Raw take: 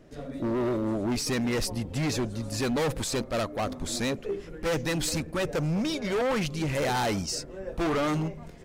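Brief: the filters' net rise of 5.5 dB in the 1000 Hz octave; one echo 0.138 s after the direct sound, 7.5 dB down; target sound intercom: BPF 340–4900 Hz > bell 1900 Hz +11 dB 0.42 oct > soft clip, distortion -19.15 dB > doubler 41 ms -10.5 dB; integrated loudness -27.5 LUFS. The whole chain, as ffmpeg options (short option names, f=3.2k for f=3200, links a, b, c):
-filter_complex "[0:a]highpass=340,lowpass=4.9k,equalizer=f=1k:t=o:g=6.5,equalizer=f=1.9k:t=o:w=0.42:g=11,aecho=1:1:138:0.422,asoftclip=threshold=-16.5dB,asplit=2[a][b];[b]adelay=41,volume=-10.5dB[c];[a][c]amix=inputs=2:normalize=0,volume=0.5dB"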